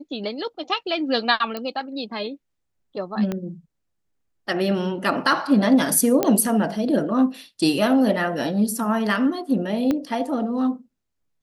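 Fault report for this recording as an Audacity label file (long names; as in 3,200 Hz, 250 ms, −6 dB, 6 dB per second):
1.570000	1.570000	click −15 dBFS
3.320000	3.320000	click −14 dBFS
6.230000	6.230000	click −6 dBFS
9.910000	9.910000	click −11 dBFS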